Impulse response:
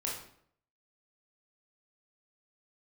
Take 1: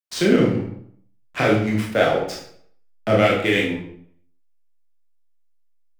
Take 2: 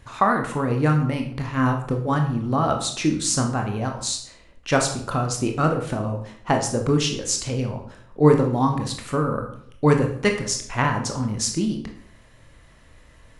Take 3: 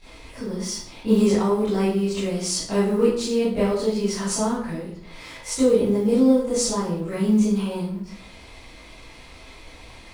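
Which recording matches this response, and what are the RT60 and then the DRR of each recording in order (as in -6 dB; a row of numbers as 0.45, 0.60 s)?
1; 0.65, 0.65, 0.65 s; -4.0, 3.0, -13.5 dB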